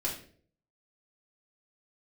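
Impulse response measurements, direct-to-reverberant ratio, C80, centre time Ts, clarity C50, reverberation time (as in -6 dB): -5.5 dB, 11.5 dB, 26 ms, 7.0 dB, 0.50 s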